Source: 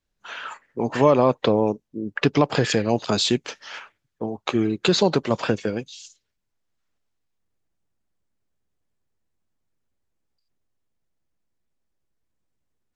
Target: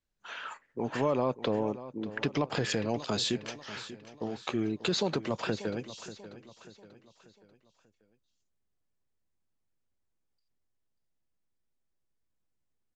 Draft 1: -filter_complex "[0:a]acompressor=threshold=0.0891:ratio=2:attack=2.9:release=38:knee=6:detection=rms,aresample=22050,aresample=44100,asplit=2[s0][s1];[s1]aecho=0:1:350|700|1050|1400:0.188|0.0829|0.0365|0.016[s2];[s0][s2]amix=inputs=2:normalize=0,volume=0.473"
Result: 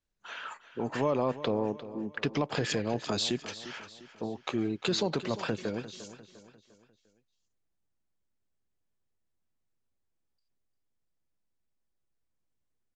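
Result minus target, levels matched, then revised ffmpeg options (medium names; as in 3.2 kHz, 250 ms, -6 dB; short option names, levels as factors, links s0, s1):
echo 239 ms early
-filter_complex "[0:a]acompressor=threshold=0.0891:ratio=2:attack=2.9:release=38:knee=6:detection=rms,aresample=22050,aresample=44100,asplit=2[s0][s1];[s1]aecho=0:1:589|1178|1767|2356:0.188|0.0829|0.0365|0.016[s2];[s0][s2]amix=inputs=2:normalize=0,volume=0.473"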